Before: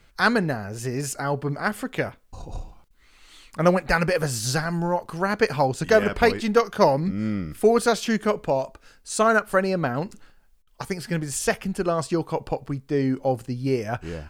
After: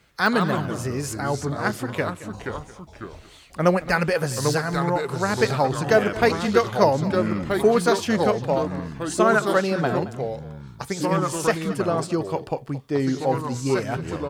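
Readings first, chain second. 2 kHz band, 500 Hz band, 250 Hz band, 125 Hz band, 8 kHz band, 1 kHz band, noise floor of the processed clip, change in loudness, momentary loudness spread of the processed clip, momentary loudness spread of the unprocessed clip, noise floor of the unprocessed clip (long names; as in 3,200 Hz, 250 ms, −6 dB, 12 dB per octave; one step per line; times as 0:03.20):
0.0 dB, +1.0 dB, +1.5 dB, +1.5 dB, −1.0 dB, +1.5 dB, −46 dBFS, +1.0 dB, 13 LU, 11 LU, −57 dBFS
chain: de-essing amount 50%
high-pass filter 68 Hz
delay with pitch and tempo change per echo 102 ms, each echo −3 semitones, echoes 2, each echo −6 dB
on a send: single-tap delay 222 ms −17 dB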